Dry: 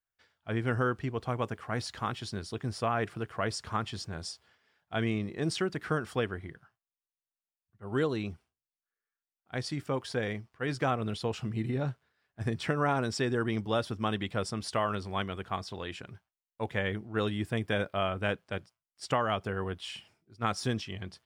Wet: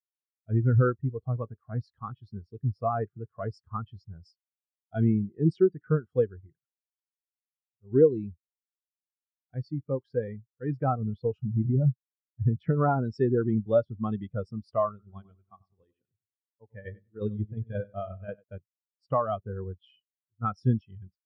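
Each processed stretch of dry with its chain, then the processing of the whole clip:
14.89–18.44 tremolo saw down 5.6 Hz, depth 50% + feedback echo 95 ms, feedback 47%, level -7 dB + upward expander, over -40 dBFS
whole clip: low shelf 130 Hz +2.5 dB; spectral expander 2.5:1; gain +6 dB

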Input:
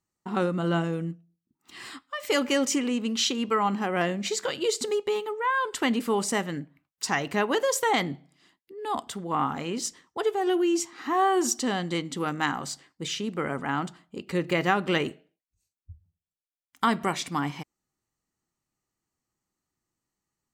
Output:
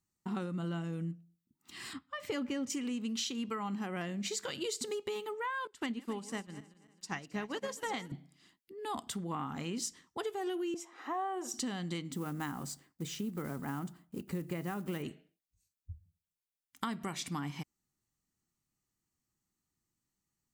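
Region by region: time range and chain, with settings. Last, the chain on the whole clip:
1.93–2.7 LPF 2200 Hz 6 dB/oct + bell 110 Hz +11 dB 2 oct
5.67–8.12 regenerating reverse delay 0.134 s, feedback 65%, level -11 dB + high shelf 11000 Hz -11 dB + upward expander 2.5:1, over -34 dBFS
10.74–11.54 resonant high-pass 550 Hz, resonance Q 2.4 + high shelf 2100 Hz -11.5 dB + notch 4500 Hz, Q 8.4
12.12–15.03 block floating point 5-bit + bell 3600 Hz -10 dB 2.5 oct
whole clip: EQ curve 210 Hz 0 dB, 510 Hz -8 dB, 14000 Hz +1 dB; compressor, threshold -34 dBFS

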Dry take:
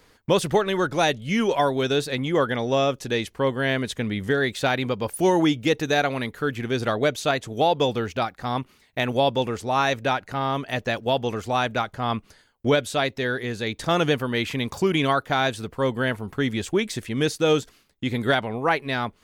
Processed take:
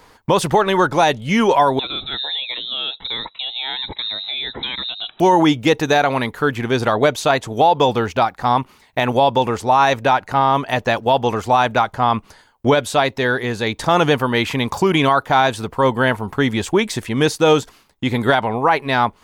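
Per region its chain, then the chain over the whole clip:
1.79–5.2 compressor, threshold -27 dBFS + inverted band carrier 3900 Hz + cascading phaser rising 1.3 Hz
whole clip: bell 920 Hz +9.5 dB 0.76 oct; maximiser +9.5 dB; gain -3.5 dB

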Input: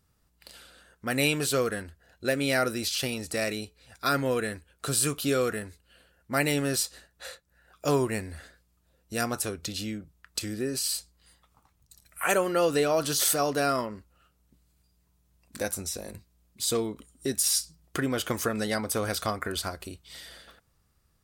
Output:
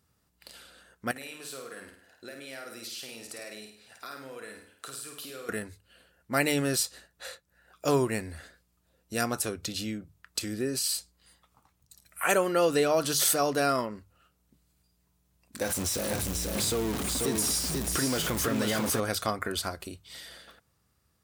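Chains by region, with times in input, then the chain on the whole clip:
1.11–5.49 compressor 12:1, threshold -37 dBFS + HPF 480 Hz 6 dB/oct + flutter echo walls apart 8.9 m, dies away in 0.6 s
15.62–19 zero-crossing step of -26.5 dBFS + compressor 2.5:1, threshold -28 dBFS + echo 0.489 s -3.5 dB
whole clip: HPF 68 Hz; notches 50/100/150 Hz

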